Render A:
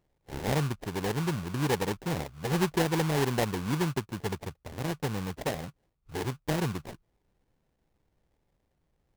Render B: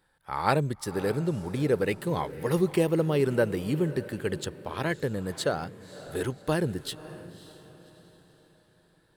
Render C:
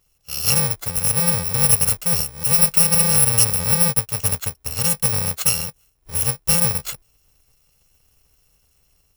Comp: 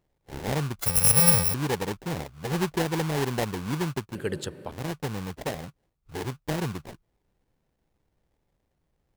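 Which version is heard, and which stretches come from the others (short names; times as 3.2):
A
0.79–1.54 from C
4.15–4.71 from B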